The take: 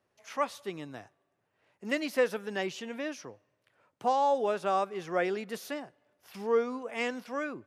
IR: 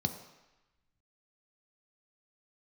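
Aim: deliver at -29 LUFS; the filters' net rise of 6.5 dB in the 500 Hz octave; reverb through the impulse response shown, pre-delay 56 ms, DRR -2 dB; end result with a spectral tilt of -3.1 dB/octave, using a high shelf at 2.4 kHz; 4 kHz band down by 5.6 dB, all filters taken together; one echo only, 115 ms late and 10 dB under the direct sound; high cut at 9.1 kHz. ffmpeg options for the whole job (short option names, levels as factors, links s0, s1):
-filter_complex "[0:a]lowpass=9100,equalizer=f=500:t=o:g=7.5,highshelf=f=2400:g=-3,equalizer=f=4000:t=o:g=-5.5,aecho=1:1:115:0.316,asplit=2[s0][s1];[1:a]atrim=start_sample=2205,adelay=56[s2];[s1][s2]afir=irnorm=-1:irlink=0,volume=0.841[s3];[s0][s3]amix=inputs=2:normalize=0,volume=0.376"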